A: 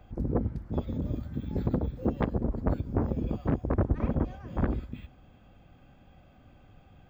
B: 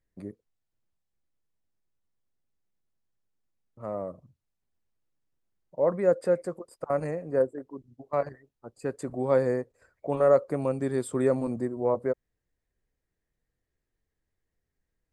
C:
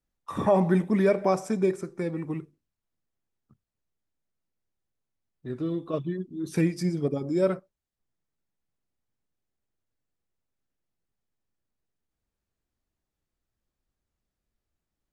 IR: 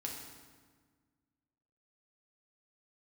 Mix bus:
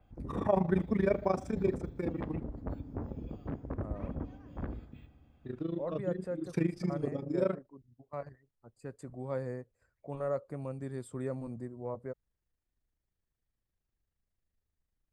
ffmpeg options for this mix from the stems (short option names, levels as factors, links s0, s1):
-filter_complex "[0:a]volume=0.224,asplit=2[s0][s1];[s1]volume=0.335[s2];[1:a]asubboost=boost=2.5:cutoff=190,volume=0.251[s3];[2:a]highshelf=f=6000:g=-10.5,tremolo=f=26:d=0.857,volume=0.708[s4];[3:a]atrim=start_sample=2205[s5];[s2][s5]afir=irnorm=-1:irlink=0[s6];[s0][s3][s4][s6]amix=inputs=4:normalize=0,adynamicequalizer=threshold=0.00112:dfrequency=5800:dqfactor=0.7:tfrequency=5800:tqfactor=0.7:attack=5:release=100:ratio=0.375:range=1.5:mode=cutabove:tftype=highshelf"